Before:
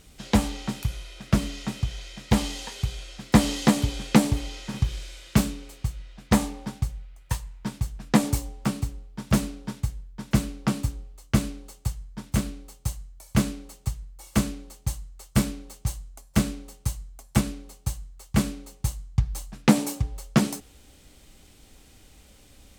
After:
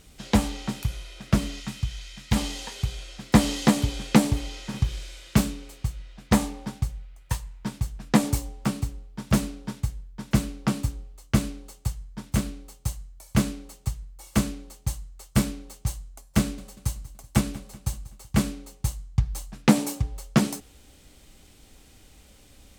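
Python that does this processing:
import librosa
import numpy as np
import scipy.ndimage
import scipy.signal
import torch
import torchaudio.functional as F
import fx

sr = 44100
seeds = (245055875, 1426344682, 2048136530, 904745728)

y = fx.peak_eq(x, sr, hz=470.0, db=-10.5, octaves=1.9, at=(1.6, 2.36))
y = fx.echo_feedback(y, sr, ms=189, feedback_pct=50, wet_db=-18.5, at=(16.39, 18.49))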